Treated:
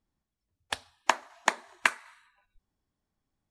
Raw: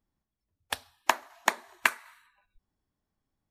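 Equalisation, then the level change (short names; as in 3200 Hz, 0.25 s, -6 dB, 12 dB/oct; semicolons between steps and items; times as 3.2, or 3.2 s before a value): LPF 9600 Hz 24 dB/oct; 0.0 dB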